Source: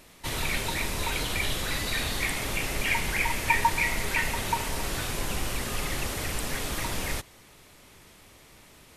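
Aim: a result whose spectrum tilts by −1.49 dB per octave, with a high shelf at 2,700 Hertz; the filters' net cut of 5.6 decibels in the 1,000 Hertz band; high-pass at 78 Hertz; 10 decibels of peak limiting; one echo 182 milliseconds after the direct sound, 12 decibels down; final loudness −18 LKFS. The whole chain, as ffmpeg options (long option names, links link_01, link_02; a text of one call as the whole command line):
ffmpeg -i in.wav -af "highpass=78,equalizer=frequency=1000:width_type=o:gain=-7.5,highshelf=frequency=2700:gain=9,alimiter=limit=-19dB:level=0:latency=1,aecho=1:1:182:0.251,volume=8.5dB" out.wav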